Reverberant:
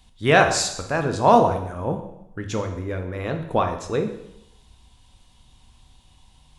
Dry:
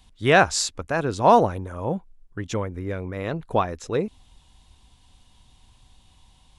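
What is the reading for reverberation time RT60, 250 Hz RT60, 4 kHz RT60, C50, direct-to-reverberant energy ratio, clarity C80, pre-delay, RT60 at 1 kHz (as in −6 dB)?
0.80 s, 0.80 s, 0.75 s, 8.5 dB, 5.0 dB, 11.0 dB, 5 ms, 0.80 s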